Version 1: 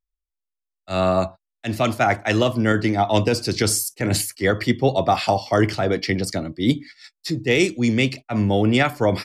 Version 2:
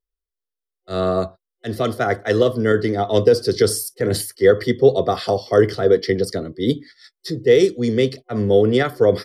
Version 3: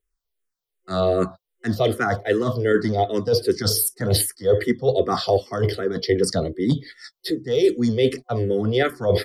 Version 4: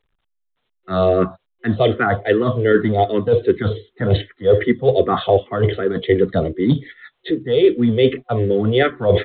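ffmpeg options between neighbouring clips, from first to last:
-af "superequalizer=7b=3.55:9b=0.447:12b=0.282:15b=0.447,volume=0.841"
-filter_complex "[0:a]areverse,acompressor=threshold=0.0794:ratio=6,areverse,asplit=2[s0][s1];[s1]afreqshift=-2.6[s2];[s0][s2]amix=inputs=2:normalize=1,volume=2.66"
-af "volume=1.68" -ar 8000 -c:a pcm_alaw

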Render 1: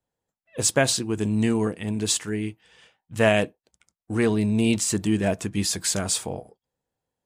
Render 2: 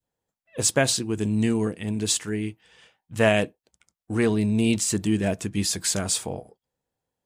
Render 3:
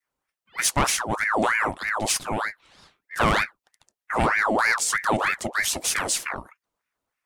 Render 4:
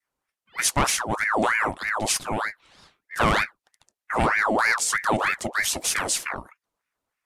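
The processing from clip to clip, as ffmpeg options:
-af "adynamicequalizer=threshold=0.0126:dfrequency=960:dqfactor=0.81:tfrequency=960:tqfactor=0.81:attack=5:release=100:ratio=0.375:range=2.5:mode=cutabove:tftype=bell"
-af "aeval=exprs='0.447*(cos(1*acos(clip(val(0)/0.447,-1,1)))-cos(1*PI/2))+0.0708*(cos(2*acos(clip(val(0)/0.447,-1,1)))-cos(2*PI/2))+0.0501*(cos(5*acos(clip(val(0)/0.447,-1,1)))-cos(5*PI/2))':c=same,aeval=exprs='val(0)*sin(2*PI*1200*n/s+1200*0.65/3.2*sin(2*PI*3.2*n/s))':c=same"
-af "aresample=32000,aresample=44100"

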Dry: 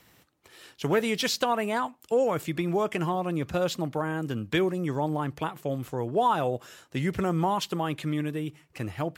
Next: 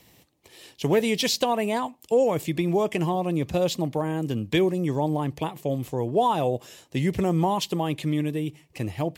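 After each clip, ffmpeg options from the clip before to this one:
-af "equalizer=f=1400:w=2.5:g=-14,volume=1.58"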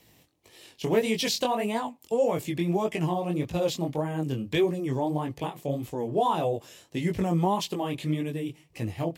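-af "flanger=delay=17.5:depth=6.4:speed=1.7"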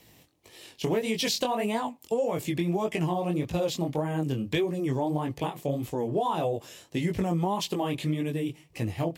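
-af "acompressor=threshold=0.0501:ratio=6,volume=1.33"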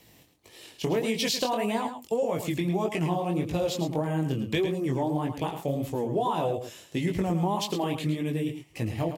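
-af "aecho=1:1:108:0.355"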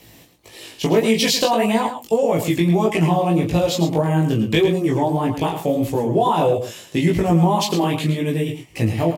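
-filter_complex "[0:a]asplit=2[s0][s1];[s1]adelay=18,volume=0.668[s2];[s0][s2]amix=inputs=2:normalize=0,volume=2.51"

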